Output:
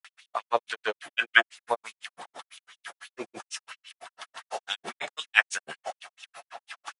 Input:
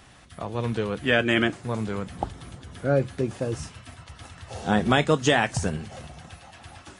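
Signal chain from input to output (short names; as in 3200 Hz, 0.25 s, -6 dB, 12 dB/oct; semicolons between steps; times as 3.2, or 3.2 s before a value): LFO high-pass sine 4.5 Hz 620–3200 Hz; grains 97 ms, grains 6/s, pitch spread up and down by 0 st; gain +6 dB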